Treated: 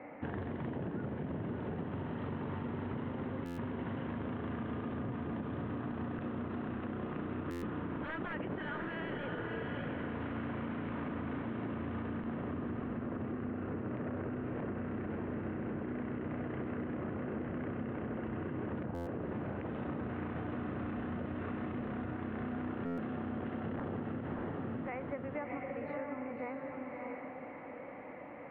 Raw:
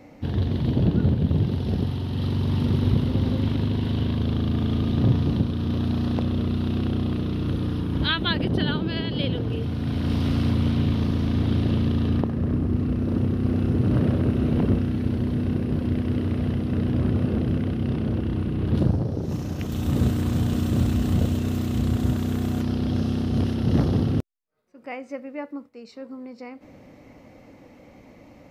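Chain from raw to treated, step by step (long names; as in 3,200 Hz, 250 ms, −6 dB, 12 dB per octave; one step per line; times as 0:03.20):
high-pass filter 930 Hz 6 dB per octave
wrap-around overflow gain 21 dB
feedback delay with all-pass diffusion 615 ms, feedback 45%, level −4.5 dB
brickwall limiter −27.5 dBFS, peak gain reduction 9.5 dB
inverse Chebyshev low-pass filter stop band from 5,000 Hz, stop band 50 dB
downward compressor 6 to 1, threshold −43 dBFS, peak gain reduction 10.5 dB
buffer that repeats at 0:03.45/0:07.50/0:18.94/0:22.85, samples 512, times 10
level +7 dB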